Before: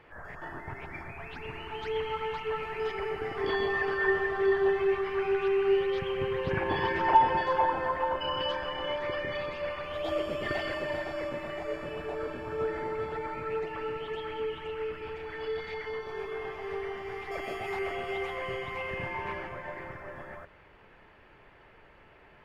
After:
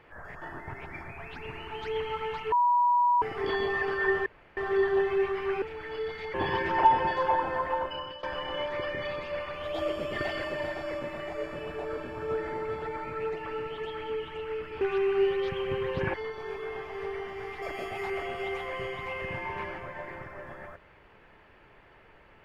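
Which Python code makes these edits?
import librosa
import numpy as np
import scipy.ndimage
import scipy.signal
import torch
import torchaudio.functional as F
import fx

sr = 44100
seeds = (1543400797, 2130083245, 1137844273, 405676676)

y = fx.edit(x, sr, fx.bleep(start_s=2.52, length_s=0.7, hz=970.0, db=-20.0),
    fx.insert_room_tone(at_s=4.26, length_s=0.31),
    fx.swap(start_s=5.31, length_s=1.33, other_s=15.11, other_length_s=0.72),
    fx.fade_out_to(start_s=8.06, length_s=0.47, floor_db=-19.0), tone=tone)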